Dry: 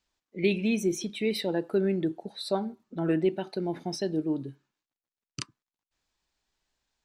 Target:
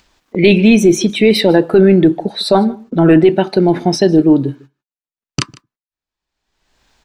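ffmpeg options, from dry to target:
ffmpeg -i in.wav -filter_complex "[0:a]agate=range=-49dB:threshold=-57dB:ratio=16:detection=peak,highshelf=frequency=5000:gain=-7.5,acompressor=mode=upward:threshold=-37dB:ratio=2.5,apsyclip=22dB,asplit=2[link_01][link_02];[link_02]aecho=0:1:152:0.0708[link_03];[link_01][link_03]amix=inputs=2:normalize=0,volume=-2dB" out.wav

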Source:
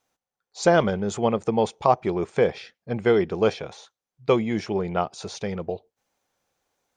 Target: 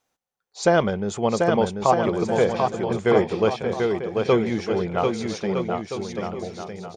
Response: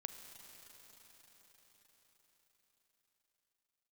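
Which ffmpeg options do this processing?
-af "aecho=1:1:740|1258|1621|1874|2052:0.631|0.398|0.251|0.158|0.1"

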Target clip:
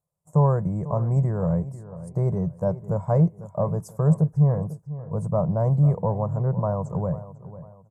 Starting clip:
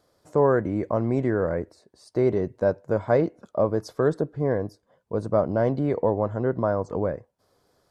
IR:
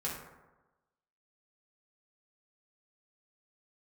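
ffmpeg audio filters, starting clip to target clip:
-filter_complex "[0:a]agate=range=-20dB:threshold=-51dB:ratio=16:detection=peak,firequalizer=gain_entry='entry(110,0);entry(160,11);entry(250,-19);entry(370,-15);entry(540,-8);entry(1000,-4);entry(1500,-19);entry(4000,-26);entry(7400,2)':delay=0.05:min_phase=1,asplit=2[link_01][link_02];[link_02]adelay=497,lowpass=frequency=3400:poles=1,volume=-15dB,asplit=2[link_03][link_04];[link_04]adelay=497,lowpass=frequency=3400:poles=1,volume=0.38,asplit=2[link_05][link_06];[link_06]adelay=497,lowpass=frequency=3400:poles=1,volume=0.38[link_07];[link_03][link_05][link_07]amix=inputs=3:normalize=0[link_08];[link_01][link_08]amix=inputs=2:normalize=0,volume=4.5dB"

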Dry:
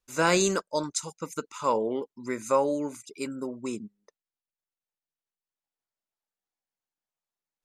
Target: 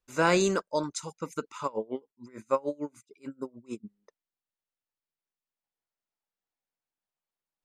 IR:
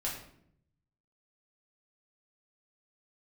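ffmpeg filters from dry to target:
-filter_complex "[0:a]highshelf=frequency=4900:gain=-9.5,asplit=3[link_01][link_02][link_03];[link_01]afade=type=out:start_time=1.66:duration=0.02[link_04];[link_02]aeval=exprs='val(0)*pow(10,-28*(0.5-0.5*cos(2*PI*6.7*n/s))/20)':channel_layout=same,afade=type=in:start_time=1.66:duration=0.02,afade=type=out:start_time=3.83:duration=0.02[link_05];[link_03]afade=type=in:start_time=3.83:duration=0.02[link_06];[link_04][link_05][link_06]amix=inputs=3:normalize=0"

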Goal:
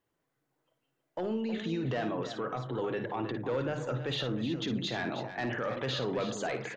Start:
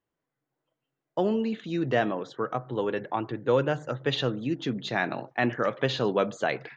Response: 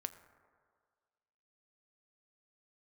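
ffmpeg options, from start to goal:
-filter_complex "[0:a]aeval=exprs='0.299*sin(PI/2*1.58*val(0)/0.299)':channel_layout=same,alimiter=limit=-22.5dB:level=0:latency=1:release=24,bandreject=frequency=50:width_type=h:width=6,bandreject=frequency=100:width_type=h:width=6,bandreject=frequency=150:width_type=h:width=6,bandreject=frequency=200:width_type=h:width=6,asplit=2[link_01][link_02];[link_02]aecho=0:1:55|317:0.335|0.299[link_03];[link_01][link_03]amix=inputs=2:normalize=0,volume=-4dB"

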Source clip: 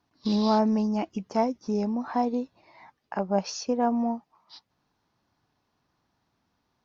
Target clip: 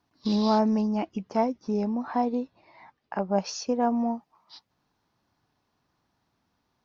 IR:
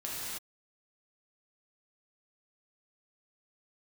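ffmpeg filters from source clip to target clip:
-filter_complex "[0:a]asettb=1/sr,asplit=3[link_01][link_02][link_03];[link_01]atrim=end=0.814[link_04];[link_02]atrim=start=0.81:end=3.36,asetpts=PTS-STARTPTS,afade=type=in:duration=0.004:curve=qsin,afade=type=out:start_time=2.546:duration=0.004:curve=qsin,lowpass=4800[link_05];[link_03]atrim=start=3.356[link_06];[link_04][link_05]acrossfade=duration=0.004:curve1=hsin:curve2=qsin[link_07];[link_07][link_06]acrossfade=duration=0.004:curve1=qsin:curve2=hsin"

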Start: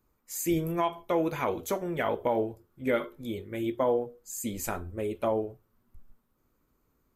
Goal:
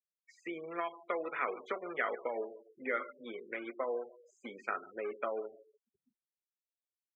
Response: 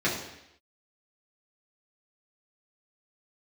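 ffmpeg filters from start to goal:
-filter_complex "[0:a]asplit=2[link_01][link_02];[link_02]acrusher=bits=6:dc=4:mix=0:aa=0.000001,volume=-6.5dB[link_03];[link_01][link_03]amix=inputs=2:normalize=0,acompressor=threshold=-46dB:ratio=2.5,asettb=1/sr,asplit=3[link_04][link_05][link_06];[link_04]atrim=end=3.444[link_07];[link_05]atrim=start=3.44:end=3.91,asetpts=PTS-STARTPTS,afade=type=in:duration=0.004:curve=qsin,afade=type=out:start_time=0.466:duration=0.004:curve=qsin,asplit=2[link_08][link_09];[link_09]adelay=25,volume=-13dB[link_10];[link_08][link_10]amix=inputs=2:normalize=0,atrim=end_sample=20727[link_11];[link_06]atrim=start=3.906[link_12];[link_07][link_11]acrossfade=duration=0.004:curve1=hsin:curve2=qsin[link_13];[link_13][link_12]acrossfade=duration=0.004:curve1=qsin:curve2=hsin,aecho=1:1:147|294|441:0.15|0.0598|0.0239,afftfilt=real='re*gte(hypot(re,im),0.00355)':imag='im*gte(hypot(re,im),0.00355)':win_size=1024:overlap=0.75,highpass=frequency=320:width=0.5412,highpass=frequency=320:width=1.3066,equalizer=frequency=320:width_type=q:width=4:gain=-9,equalizer=frequency=600:width_type=q:width=4:gain=-4,equalizer=frequency=900:width_type=q:width=4:gain=-9,equalizer=frequency=1300:width_type=q:width=4:gain=9,equalizer=frequency=1900:width_type=q:width=4:gain=7,lowpass=frequency=2900:width=0.5412,lowpass=frequency=2900:width=1.3066,volume=7dB"

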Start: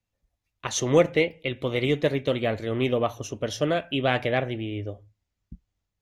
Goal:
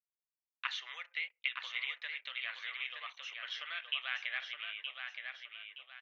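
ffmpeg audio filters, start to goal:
ffmpeg -i in.wav -filter_complex "[0:a]acompressor=threshold=-31dB:ratio=8,anlmdn=0.00398,highpass=frequency=1400:width=0.5412,highpass=frequency=1400:width=1.3066,highshelf=frequency=3200:gain=11.5,asplit=2[link_01][link_02];[link_02]adelay=920,lowpass=frequency=3000:poles=1,volume=-4.5dB,asplit=2[link_03][link_04];[link_04]adelay=920,lowpass=frequency=3000:poles=1,volume=0.37,asplit=2[link_05][link_06];[link_06]adelay=920,lowpass=frequency=3000:poles=1,volume=0.37,asplit=2[link_07][link_08];[link_08]adelay=920,lowpass=frequency=3000:poles=1,volume=0.37,asplit=2[link_09][link_10];[link_10]adelay=920,lowpass=frequency=3000:poles=1,volume=0.37[link_11];[link_01][link_03][link_05][link_07][link_09][link_11]amix=inputs=6:normalize=0,acrossover=split=3000[link_12][link_13];[link_13]acompressor=threshold=-54dB:ratio=4:attack=1:release=60[link_14];[link_12][link_14]amix=inputs=2:normalize=0,lowpass=frequency=4400:width=0.5412,lowpass=frequency=4400:width=1.3066,volume=2.5dB" out.wav

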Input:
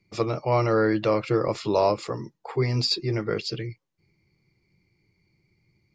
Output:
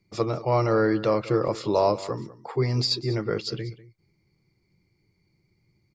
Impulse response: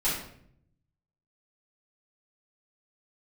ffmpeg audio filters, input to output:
-af "equalizer=frequency=2500:width=2.1:gain=-5.5,aecho=1:1:195:0.133"

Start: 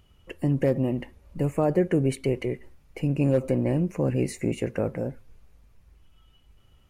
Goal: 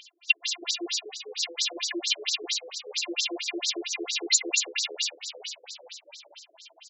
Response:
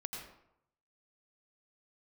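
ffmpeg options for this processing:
-filter_complex "[0:a]equalizer=frequency=470:width=1.5:gain=-4,bandreject=frequency=610:width=12,afftfilt=real='hypot(re,im)*cos(PI*b)':imag='0':win_size=512:overlap=0.75,asplit=2[link_01][link_02];[link_02]acrusher=samples=42:mix=1:aa=0.000001,volume=-4dB[link_03];[link_01][link_03]amix=inputs=2:normalize=0,asplit=2[link_04][link_05];[link_05]highpass=frequency=720:poles=1,volume=17dB,asoftclip=type=tanh:threshold=-13.5dB[link_06];[link_04][link_06]amix=inputs=2:normalize=0,lowpass=frequency=4700:poles=1,volume=-6dB,asoftclip=type=hard:threshold=-23dB,flanger=delay=7.4:depth=3:regen=-82:speed=0.35:shape=triangular,aexciter=amount=12.8:drive=8.2:freq=2400,asplit=2[link_07][link_08];[link_08]asplit=7[link_09][link_10][link_11][link_12][link_13][link_14][link_15];[link_09]adelay=428,afreqshift=79,volume=-9dB[link_16];[link_10]adelay=856,afreqshift=158,volume=-13.4dB[link_17];[link_11]adelay=1284,afreqshift=237,volume=-17.9dB[link_18];[link_12]adelay=1712,afreqshift=316,volume=-22.3dB[link_19];[link_13]adelay=2140,afreqshift=395,volume=-26.7dB[link_20];[link_14]adelay=2568,afreqshift=474,volume=-31.2dB[link_21];[link_15]adelay=2996,afreqshift=553,volume=-35.6dB[link_22];[link_16][link_17][link_18][link_19][link_20][link_21][link_22]amix=inputs=7:normalize=0[link_23];[link_07][link_23]amix=inputs=2:normalize=0,afftfilt=real='re*between(b*sr/1024,380*pow(5600/380,0.5+0.5*sin(2*PI*4.4*pts/sr))/1.41,380*pow(5600/380,0.5+0.5*sin(2*PI*4.4*pts/sr))*1.41)':imag='im*between(b*sr/1024,380*pow(5600/380,0.5+0.5*sin(2*PI*4.4*pts/sr))/1.41,380*pow(5600/380,0.5+0.5*sin(2*PI*4.4*pts/sr))*1.41)':win_size=1024:overlap=0.75"

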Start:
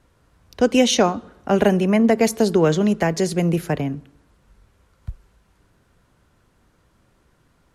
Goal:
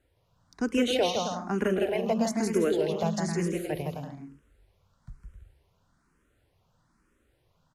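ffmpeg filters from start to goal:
ffmpeg -i in.wav -filter_complex "[0:a]bandreject=frequency=68.26:width_type=h:width=4,bandreject=frequency=136.52:width_type=h:width=4,bandreject=frequency=204.78:width_type=h:width=4,asplit=2[link_01][link_02];[link_02]aecho=0:1:160|264|331.6|375.5|404.1:0.631|0.398|0.251|0.158|0.1[link_03];[link_01][link_03]amix=inputs=2:normalize=0,asplit=2[link_04][link_05];[link_05]afreqshift=1.1[link_06];[link_04][link_06]amix=inputs=2:normalize=1,volume=-8dB" out.wav

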